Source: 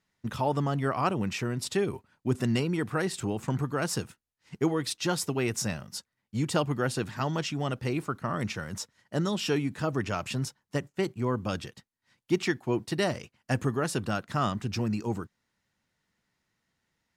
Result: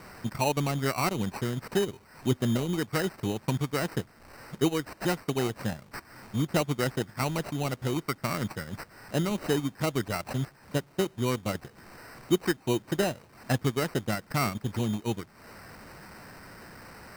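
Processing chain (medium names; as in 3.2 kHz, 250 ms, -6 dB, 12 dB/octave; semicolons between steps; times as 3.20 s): one-bit delta coder 64 kbps, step -41 dBFS; sample-and-hold 13×; transient shaper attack +2 dB, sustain -10 dB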